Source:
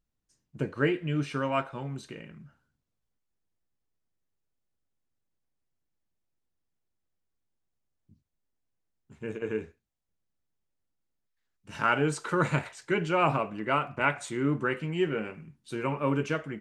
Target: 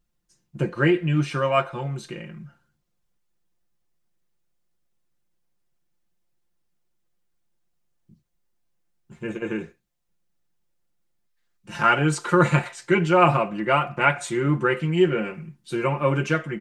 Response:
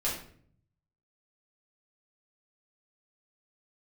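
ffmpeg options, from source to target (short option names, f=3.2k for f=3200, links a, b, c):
-af "aecho=1:1:5.7:0.74,volume=5dB"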